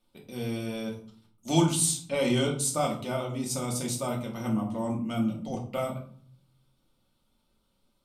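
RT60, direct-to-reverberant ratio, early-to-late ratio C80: 0.50 s, −1.5 dB, 12.5 dB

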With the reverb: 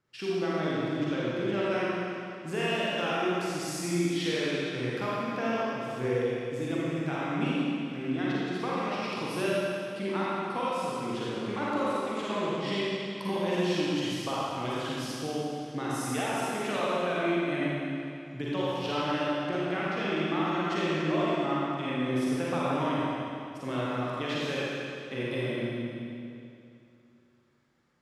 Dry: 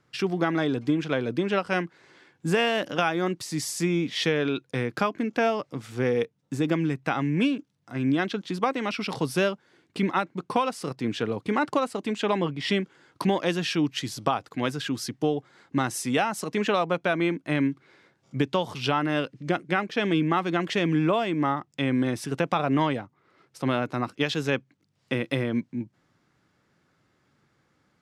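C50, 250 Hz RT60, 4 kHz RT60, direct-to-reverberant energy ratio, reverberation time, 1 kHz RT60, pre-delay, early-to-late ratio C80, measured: −6.0 dB, 2.7 s, 2.4 s, −8.0 dB, 2.6 s, 2.6 s, 39 ms, −3.5 dB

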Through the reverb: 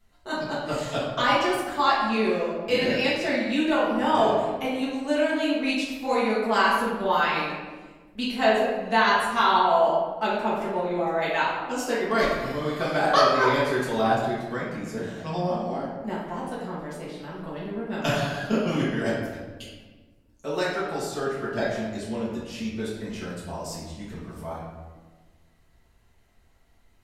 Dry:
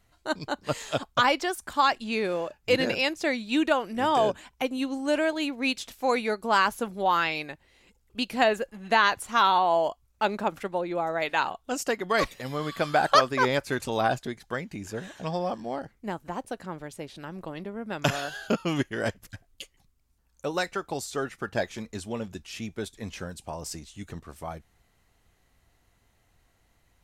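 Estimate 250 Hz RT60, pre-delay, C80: 1.9 s, 4 ms, 3.5 dB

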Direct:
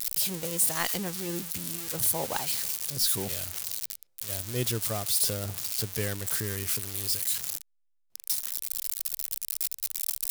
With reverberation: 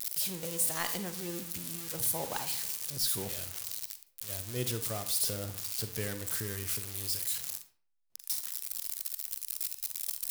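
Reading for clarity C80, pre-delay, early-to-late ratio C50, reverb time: 15.0 dB, 39 ms, 10.5 dB, 0.50 s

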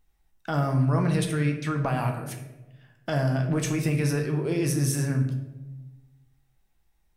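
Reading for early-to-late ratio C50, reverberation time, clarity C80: 7.0 dB, 1.1 s, 9.5 dB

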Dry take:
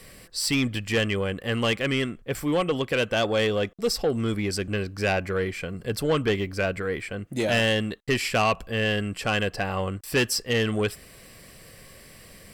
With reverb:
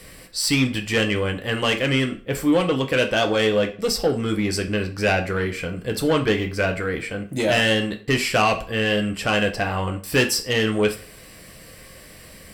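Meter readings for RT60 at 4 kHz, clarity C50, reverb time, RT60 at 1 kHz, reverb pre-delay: 0.35 s, 13.5 dB, 0.40 s, 0.40 s, 3 ms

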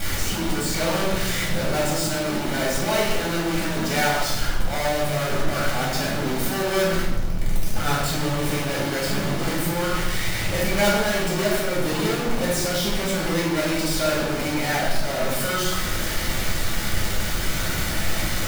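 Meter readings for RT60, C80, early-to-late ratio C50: 1.0 s, 4.5 dB, 1.5 dB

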